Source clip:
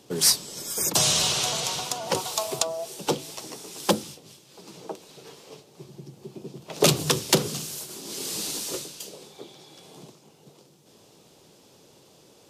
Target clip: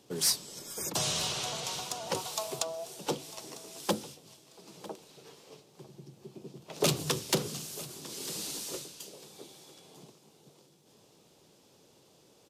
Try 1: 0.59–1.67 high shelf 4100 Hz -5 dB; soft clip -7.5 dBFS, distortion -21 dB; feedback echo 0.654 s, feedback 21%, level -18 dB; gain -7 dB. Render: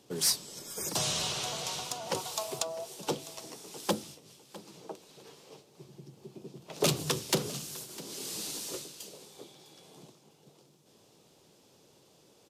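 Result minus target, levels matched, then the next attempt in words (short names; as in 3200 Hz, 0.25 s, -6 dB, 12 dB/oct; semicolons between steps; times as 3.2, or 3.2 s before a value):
echo 0.296 s early
0.59–1.67 high shelf 4100 Hz -5 dB; soft clip -7.5 dBFS, distortion -21 dB; feedback echo 0.95 s, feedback 21%, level -18 dB; gain -7 dB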